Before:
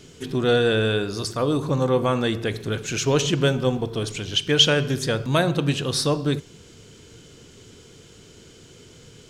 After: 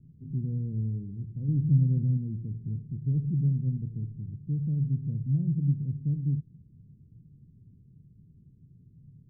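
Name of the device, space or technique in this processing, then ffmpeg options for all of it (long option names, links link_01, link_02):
the neighbour's flat through the wall: -filter_complex "[0:a]asettb=1/sr,asplit=3[link_01][link_02][link_03];[link_01]atrim=end=1.484[link_04];[link_02]atrim=start=1.48:end=2.17,asetpts=PTS-STARTPTS,afade=type=in:duration=0.004:curve=qsin,afade=type=out:start_time=0.686:duration=0.004:curve=qsin,tiltshelf=frequency=780:gain=5[link_05];[link_03]atrim=start=2.166[link_06];[link_04][link_05]acrossfade=duration=0.004:curve1=hsin:curve2=qsin[link_07];[link_07][link_06]acrossfade=duration=0.004:curve1=qsin:curve2=hsin,lowpass=frequency=210:width=0.5412,lowpass=frequency=210:width=1.3066,equalizer=frequency=140:width_type=o:width=0.87:gain=7,volume=-7dB"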